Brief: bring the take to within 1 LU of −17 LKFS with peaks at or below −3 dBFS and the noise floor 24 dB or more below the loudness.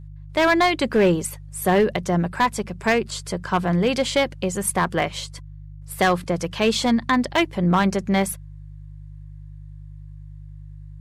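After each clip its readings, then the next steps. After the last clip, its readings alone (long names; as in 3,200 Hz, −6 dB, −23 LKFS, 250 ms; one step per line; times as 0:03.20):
share of clipped samples 0.8%; peaks flattened at −11.5 dBFS; mains hum 50 Hz; hum harmonics up to 150 Hz; level of the hum −37 dBFS; integrated loudness −21.5 LKFS; sample peak −11.5 dBFS; target loudness −17.0 LKFS
→ clipped peaks rebuilt −11.5 dBFS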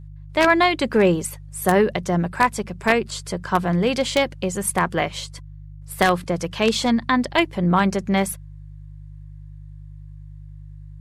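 share of clipped samples 0.0%; mains hum 50 Hz; hum harmonics up to 150 Hz; level of the hum −37 dBFS
→ hum removal 50 Hz, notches 3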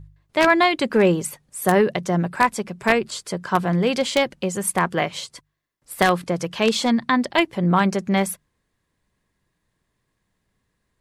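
mains hum none found; integrated loudness −21.0 LKFS; sample peak −2.5 dBFS; target loudness −17.0 LKFS
→ level +4 dB
brickwall limiter −3 dBFS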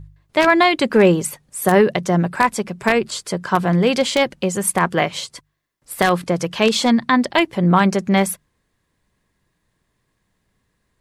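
integrated loudness −17.5 LKFS; sample peak −3.0 dBFS; background noise floor −71 dBFS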